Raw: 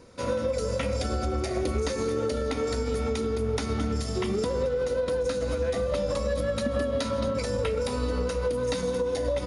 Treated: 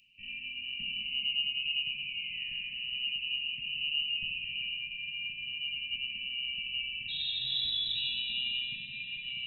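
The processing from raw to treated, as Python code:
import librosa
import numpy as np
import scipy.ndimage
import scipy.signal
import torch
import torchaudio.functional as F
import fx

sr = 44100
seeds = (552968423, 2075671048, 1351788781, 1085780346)

y = fx.spec_paint(x, sr, seeds[0], shape='rise', start_s=1.59, length_s=1.32, low_hz=260.0, high_hz=2200.0, level_db=-30.0)
y = fx.high_shelf(y, sr, hz=2000.0, db=-12.0)
y = fx.freq_invert(y, sr, carrier_hz=2900)
y = fx.ring_mod(y, sr, carrier_hz=1000.0, at=(7.08, 7.94), fade=0.02)
y = scipy.signal.sosfilt(scipy.signal.cheby2(4, 70, [550.0, 1400.0], 'bandstop', fs=sr, output='sos'), y)
y = fx.rev_plate(y, sr, seeds[1], rt60_s=3.7, hf_ratio=0.9, predelay_ms=0, drr_db=-1.5)
y = F.gain(torch.from_numpy(y), 3.5).numpy()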